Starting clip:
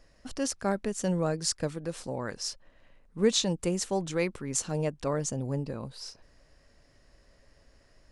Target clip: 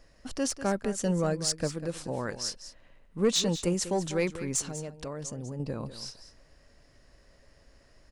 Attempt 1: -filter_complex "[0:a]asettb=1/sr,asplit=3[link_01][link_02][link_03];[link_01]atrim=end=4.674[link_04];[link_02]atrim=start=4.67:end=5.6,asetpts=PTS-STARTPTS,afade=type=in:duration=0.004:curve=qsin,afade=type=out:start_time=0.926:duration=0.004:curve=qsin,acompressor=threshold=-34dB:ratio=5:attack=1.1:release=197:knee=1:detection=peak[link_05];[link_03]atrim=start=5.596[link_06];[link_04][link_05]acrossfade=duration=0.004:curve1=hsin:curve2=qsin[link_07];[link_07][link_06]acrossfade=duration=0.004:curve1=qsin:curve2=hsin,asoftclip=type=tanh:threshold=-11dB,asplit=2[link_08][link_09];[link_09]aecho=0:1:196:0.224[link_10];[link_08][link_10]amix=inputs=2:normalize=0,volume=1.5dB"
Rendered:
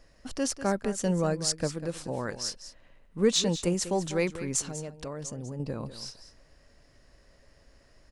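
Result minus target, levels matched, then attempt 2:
soft clipping: distortion −10 dB
-filter_complex "[0:a]asettb=1/sr,asplit=3[link_01][link_02][link_03];[link_01]atrim=end=4.674[link_04];[link_02]atrim=start=4.67:end=5.6,asetpts=PTS-STARTPTS,afade=type=in:duration=0.004:curve=qsin,afade=type=out:start_time=0.926:duration=0.004:curve=qsin,acompressor=threshold=-34dB:ratio=5:attack=1.1:release=197:knee=1:detection=peak[link_05];[link_03]atrim=start=5.596[link_06];[link_04][link_05]acrossfade=duration=0.004:curve1=hsin:curve2=qsin[link_07];[link_07][link_06]acrossfade=duration=0.004:curve1=qsin:curve2=hsin,asoftclip=type=tanh:threshold=-17.5dB,asplit=2[link_08][link_09];[link_09]aecho=0:1:196:0.224[link_10];[link_08][link_10]amix=inputs=2:normalize=0,volume=1.5dB"

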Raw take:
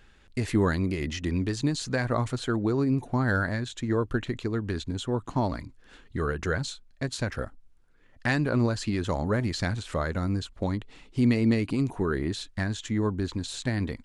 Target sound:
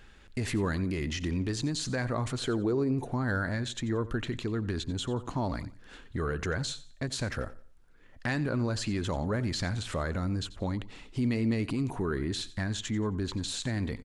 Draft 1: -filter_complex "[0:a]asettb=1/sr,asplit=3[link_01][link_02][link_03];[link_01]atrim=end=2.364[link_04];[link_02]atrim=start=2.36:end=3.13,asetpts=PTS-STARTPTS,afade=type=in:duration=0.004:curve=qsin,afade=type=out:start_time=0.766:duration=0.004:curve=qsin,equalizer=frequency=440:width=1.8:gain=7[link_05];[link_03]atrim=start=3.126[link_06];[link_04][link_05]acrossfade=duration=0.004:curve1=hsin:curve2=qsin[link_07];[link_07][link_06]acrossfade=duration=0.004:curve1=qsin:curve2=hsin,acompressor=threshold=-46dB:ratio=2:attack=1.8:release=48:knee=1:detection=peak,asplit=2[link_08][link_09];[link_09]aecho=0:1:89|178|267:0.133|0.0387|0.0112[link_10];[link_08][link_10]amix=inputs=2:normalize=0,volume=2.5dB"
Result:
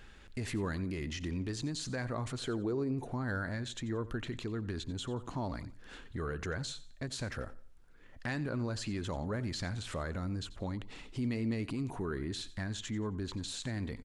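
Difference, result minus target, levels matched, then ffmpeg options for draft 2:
downward compressor: peak gain reduction +5.5 dB
-filter_complex "[0:a]asettb=1/sr,asplit=3[link_01][link_02][link_03];[link_01]atrim=end=2.364[link_04];[link_02]atrim=start=2.36:end=3.13,asetpts=PTS-STARTPTS,afade=type=in:duration=0.004:curve=qsin,afade=type=out:start_time=0.766:duration=0.004:curve=qsin,equalizer=frequency=440:width=1.8:gain=7[link_05];[link_03]atrim=start=3.126[link_06];[link_04][link_05]acrossfade=duration=0.004:curve1=hsin:curve2=qsin[link_07];[link_07][link_06]acrossfade=duration=0.004:curve1=qsin:curve2=hsin,acompressor=threshold=-34.5dB:ratio=2:attack=1.8:release=48:knee=1:detection=peak,asplit=2[link_08][link_09];[link_09]aecho=0:1:89|178|267:0.133|0.0387|0.0112[link_10];[link_08][link_10]amix=inputs=2:normalize=0,volume=2.5dB"

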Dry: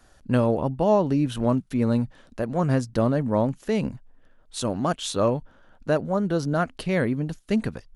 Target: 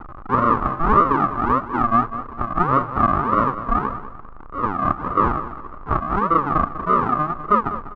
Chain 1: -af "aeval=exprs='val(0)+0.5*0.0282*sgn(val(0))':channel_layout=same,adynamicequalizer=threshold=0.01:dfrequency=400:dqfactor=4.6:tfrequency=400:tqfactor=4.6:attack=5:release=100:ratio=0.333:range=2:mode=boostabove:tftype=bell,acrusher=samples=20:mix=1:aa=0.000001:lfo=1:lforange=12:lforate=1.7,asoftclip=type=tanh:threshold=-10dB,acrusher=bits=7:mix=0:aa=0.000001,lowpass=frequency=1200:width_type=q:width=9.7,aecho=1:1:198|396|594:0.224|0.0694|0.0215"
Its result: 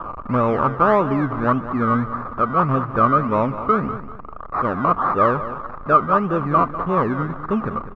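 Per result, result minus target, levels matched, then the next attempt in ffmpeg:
sample-and-hold swept by an LFO: distortion −16 dB; soft clipping: distortion +13 dB; 125 Hz band +3.0 dB
-af "aeval=exprs='val(0)+0.5*0.0282*sgn(val(0))':channel_layout=same,adynamicequalizer=threshold=0.01:dfrequency=400:dqfactor=4.6:tfrequency=400:tqfactor=4.6:attack=5:release=100:ratio=0.333:range=2:mode=boostabove:tftype=bell,acrusher=samples=75:mix=1:aa=0.000001:lfo=1:lforange=45:lforate=1.7,asoftclip=type=tanh:threshold=-10dB,acrusher=bits=7:mix=0:aa=0.000001,lowpass=frequency=1200:width_type=q:width=9.7,aecho=1:1:198|396|594:0.224|0.0694|0.0215"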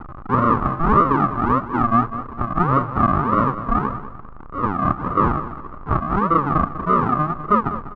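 soft clipping: distortion +13 dB; 125 Hz band +4.0 dB
-af "aeval=exprs='val(0)+0.5*0.0282*sgn(val(0))':channel_layout=same,adynamicequalizer=threshold=0.01:dfrequency=400:dqfactor=4.6:tfrequency=400:tqfactor=4.6:attack=5:release=100:ratio=0.333:range=2:mode=boostabove:tftype=bell,acrusher=samples=75:mix=1:aa=0.000001:lfo=1:lforange=45:lforate=1.7,asoftclip=type=tanh:threshold=-2.5dB,acrusher=bits=7:mix=0:aa=0.000001,lowpass=frequency=1200:width_type=q:width=9.7,aecho=1:1:198|396|594:0.224|0.0694|0.0215"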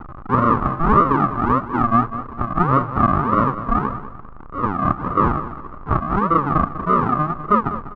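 125 Hz band +4.5 dB
-af "aeval=exprs='val(0)+0.5*0.0282*sgn(val(0))':channel_layout=same,adynamicequalizer=threshold=0.01:dfrequency=400:dqfactor=4.6:tfrequency=400:tqfactor=4.6:attack=5:release=100:ratio=0.333:range=2:mode=boostabove:tftype=bell,acrusher=samples=75:mix=1:aa=0.000001:lfo=1:lforange=45:lforate=1.7,asoftclip=type=tanh:threshold=-2.5dB,acrusher=bits=7:mix=0:aa=0.000001,lowpass=frequency=1200:width_type=q:width=9.7,equalizer=frequency=140:width=0.69:gain=-6,aecho=1:1:198|396|594:0.224|0.0694|0.0215"

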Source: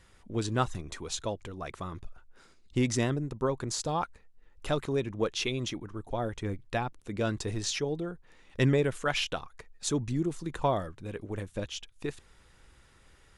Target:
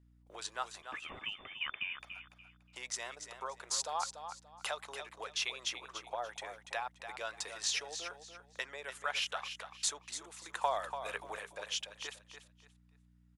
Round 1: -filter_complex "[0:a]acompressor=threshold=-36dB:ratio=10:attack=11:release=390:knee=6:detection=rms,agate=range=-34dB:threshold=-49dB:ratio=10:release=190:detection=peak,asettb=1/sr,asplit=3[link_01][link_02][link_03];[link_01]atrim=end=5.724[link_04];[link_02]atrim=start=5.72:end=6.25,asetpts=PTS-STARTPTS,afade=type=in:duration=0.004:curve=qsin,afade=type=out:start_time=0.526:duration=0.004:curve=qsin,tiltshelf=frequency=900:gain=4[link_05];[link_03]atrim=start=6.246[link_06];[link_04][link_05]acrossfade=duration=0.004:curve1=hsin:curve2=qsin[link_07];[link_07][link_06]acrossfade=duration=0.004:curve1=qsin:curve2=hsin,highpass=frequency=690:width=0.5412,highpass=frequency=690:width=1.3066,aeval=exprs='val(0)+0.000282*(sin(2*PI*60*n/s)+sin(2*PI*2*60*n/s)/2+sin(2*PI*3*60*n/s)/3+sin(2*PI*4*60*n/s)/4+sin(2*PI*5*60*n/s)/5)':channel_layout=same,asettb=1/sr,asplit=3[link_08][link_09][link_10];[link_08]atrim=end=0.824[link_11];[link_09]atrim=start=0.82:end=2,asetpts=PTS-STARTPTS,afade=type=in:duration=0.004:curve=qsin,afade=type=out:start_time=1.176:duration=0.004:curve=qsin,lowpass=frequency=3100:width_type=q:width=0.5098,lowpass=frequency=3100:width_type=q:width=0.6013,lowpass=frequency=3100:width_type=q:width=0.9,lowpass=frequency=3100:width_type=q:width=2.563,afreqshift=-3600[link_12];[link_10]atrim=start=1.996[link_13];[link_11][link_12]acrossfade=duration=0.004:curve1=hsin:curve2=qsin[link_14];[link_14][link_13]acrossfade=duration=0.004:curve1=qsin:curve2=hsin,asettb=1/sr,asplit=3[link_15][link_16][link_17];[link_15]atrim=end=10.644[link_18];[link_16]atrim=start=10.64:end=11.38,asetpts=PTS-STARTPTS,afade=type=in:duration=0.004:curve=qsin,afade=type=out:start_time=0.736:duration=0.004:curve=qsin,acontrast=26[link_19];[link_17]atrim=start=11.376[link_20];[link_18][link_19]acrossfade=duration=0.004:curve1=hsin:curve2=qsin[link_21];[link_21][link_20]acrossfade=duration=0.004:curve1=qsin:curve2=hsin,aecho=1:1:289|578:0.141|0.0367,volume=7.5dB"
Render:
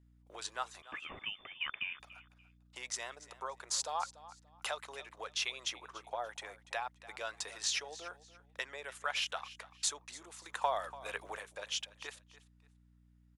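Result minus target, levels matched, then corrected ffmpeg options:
echo-to-direct −8 dB
-filter_complex "[0:a]acompressor=threshold=-36dB:ratio=10:attack=11:release=390:knee=6:detection=rms,agate=range=-34dB:threshold=-49dB:ratio=10:release=190:detection=peak,asettb=1/sr,asplit=3[link_01][link_02][link_03];[link_01]atrim=end=5.724[link_04];[link_02]atrim=start=5.72:end=6.25,asetpts=PTS-STARTPTS,afade=type=in:duration=0.004:curve=qsin,afade=type=out:start_time=0.526:duration=0.004:curve=qsin,tiltshelf=frequency=900:gain=4[link_05];[link_03]atrim=start=6.246[link_06];[link_04][link_05]acrossfade=duration=0.004:curve1=hsin:curve2=qsin[link_07];[link_07][link_06]acrossfade=duration=0.004:curve1=qsin:curve2=hsin,highpass=frequency=690:width=0.5412,highpass=frequency=690:width=1.3066,aeval=exprs='val(0)+0.000282*(sin(2*PI*60*n/s)+sin(2*PI*2*60*n/s)/2+sin(2*PI*3*60*n/s)/3+sin(2*PI*4*60*n/s)/4+sin(2*PI*5*60*n/s)/5)':channel_layout=same,asettb=1/sr,asplit=3[link_08][link_09][link_10];[link_08]atrim=end=0.824[link_11];[link_09]atrim=start=0.82:end=2,asetpts=PTS-STARTPTS,afade=type=in:duration=0.004:curve=qsin,afade=type=out:start_time=1.176:duration=0.004:curve=qsin,lowpass=frequency=3100:width_type=q:width=0.5098,lowpass=frequency=3100:width_type=q:width=0.6013,lowpass=frequency=3100:width_type=q:width=0.9,lowpass=frequency=3100:width_type=q:width=2.563,afreqshift=-3600[link_12];[link_10]atrim=start=1.996[link_13];[link_11][link_12]acrossfade=duration=0.004:curve1=hsin:curve2=qsin[link_14];[link_14][link_13]acrossfade=duration=0.004:curve1=qsin:curve2=hsin,asettb=1/sr,asplit=3[link_15][link_16][link_17];[link_15]atrim=end=10.644[link_18];[link_16]atrim=start=10.64:end=11.38,asetpts=PTS-STARTPTS,afade=type=in:duration=0.004:curve=qsin,afade=type=out:start_time=0.736:duration=0.004:curve=qsin,acontrast=26[link_19];[link_17]atrim=start=11.376[link_20];[link_18][link_19]acrossfade=duration=0.004:curve1=hsin:curve2=qsin[link_21];[link_21][link_20]acrossfade=duration=0.004:curve1=qsin:curve2=hsin,aecho=1:1:289|578|867:0.355|0.0923|0.024,volume=7.5dB"

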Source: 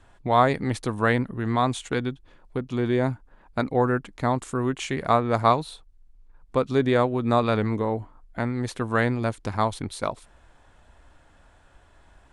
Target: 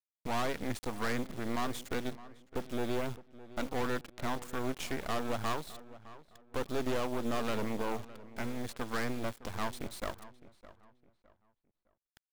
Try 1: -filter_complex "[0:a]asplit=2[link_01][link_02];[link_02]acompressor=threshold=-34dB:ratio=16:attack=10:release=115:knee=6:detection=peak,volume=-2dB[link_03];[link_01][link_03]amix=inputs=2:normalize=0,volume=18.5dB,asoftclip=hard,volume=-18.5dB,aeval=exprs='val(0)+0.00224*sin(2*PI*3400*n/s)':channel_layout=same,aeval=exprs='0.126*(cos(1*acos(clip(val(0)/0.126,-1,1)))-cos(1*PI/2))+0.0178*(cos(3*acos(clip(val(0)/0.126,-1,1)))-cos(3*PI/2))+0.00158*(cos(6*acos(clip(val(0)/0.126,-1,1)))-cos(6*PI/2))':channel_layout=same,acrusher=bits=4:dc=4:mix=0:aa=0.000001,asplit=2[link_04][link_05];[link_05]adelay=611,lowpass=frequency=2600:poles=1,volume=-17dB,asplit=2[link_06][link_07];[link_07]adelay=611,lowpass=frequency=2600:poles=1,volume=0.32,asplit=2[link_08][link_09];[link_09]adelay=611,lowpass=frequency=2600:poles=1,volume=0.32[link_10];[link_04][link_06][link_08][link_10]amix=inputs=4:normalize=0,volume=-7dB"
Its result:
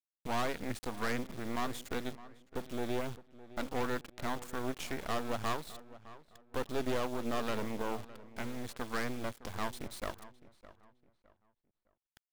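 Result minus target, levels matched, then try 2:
downward compressor: peak gain reduction +9 dB
-filter_complex "[0:a]asplit=2[link_01][link_02];[link_02]acompressor=threshold=-24.5dB:ratio=16:attack=10:release=115:knee=6:detection=peak,volume=-2dB[link_03];[link_01][link_03]amix=inputs=2:normalize=0,volume=18.5dB,asoftclip=hard,volume=-18.5dB,aeval=exprs='val(0)+0.00224*sin(2*PI*3400*n/s)':channel_layout=same,aeval=exprs='0.126*(cos(1*acos(clip(val(0)/0.126,-1,1)))-cos(1*PI/2))+0.0178*(cos(3*acos(clip(val(0)/0.126,-1,1)))-cos(3*PI/2))+0.00158*(cos(6*acos(clip(val(0)/0.126,-1,1)))-cos(6*PI/2))':channel_layout=same,acrusher=bits=4:dc=4:mix=0:aa=0.000001,asplit=2[link_04][link_05];[link_05]adelay=611,lowpass=frequency=2600:poles=1,volume=-17dB,asplit=2[link_06][link_07];[link_07]adelay=611,lowpass=frequency=2600:poles=1,volume=0.32,asplit=2[link_08][link_09];[link_09]adelay=611,lowpass=frequency=2600:poles=1,volume=0.32[link_10];[link_04][link_06][link_08][link_10]amix=inputs=4:normalize=0,volume=-7dB"

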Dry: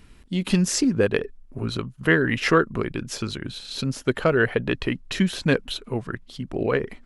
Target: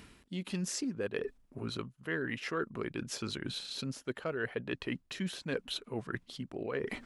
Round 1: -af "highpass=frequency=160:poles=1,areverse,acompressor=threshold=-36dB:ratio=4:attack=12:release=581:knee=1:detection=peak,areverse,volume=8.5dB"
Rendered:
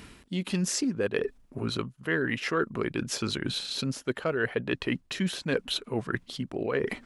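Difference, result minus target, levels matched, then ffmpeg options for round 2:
downward compressor: peak gain reduction −7.5 dB
-af "highpass=frequency=160:poles=1,areverse,acompressor=threshold=-46dB:ratio=4:attack=12:release=581:knee=1:detection=peak,areverse,volume=8.5dB"

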